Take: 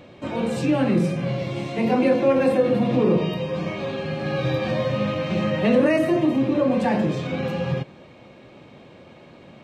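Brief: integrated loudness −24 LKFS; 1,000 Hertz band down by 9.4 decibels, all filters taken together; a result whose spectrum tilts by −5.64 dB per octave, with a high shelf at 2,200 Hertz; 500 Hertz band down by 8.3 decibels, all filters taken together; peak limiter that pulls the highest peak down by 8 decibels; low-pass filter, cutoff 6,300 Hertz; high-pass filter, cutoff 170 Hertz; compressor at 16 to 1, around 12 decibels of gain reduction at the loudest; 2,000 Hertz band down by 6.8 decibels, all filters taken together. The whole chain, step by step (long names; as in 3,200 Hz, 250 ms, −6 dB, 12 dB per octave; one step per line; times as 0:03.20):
high-pass filter 170 Hz
low-pass filter 6,300 Hz
parametric band 500 Hz −7 dB
parametric band 1,000 Hz −9 dB
parametric band 2,000 Hz −8 dB
high-shelf EQ 2,200 Hz +3.5 dB
downward compressor 16 to 1, threshold −31 dBFS
level +15.5 dB
brickwall limiter −16 dBFS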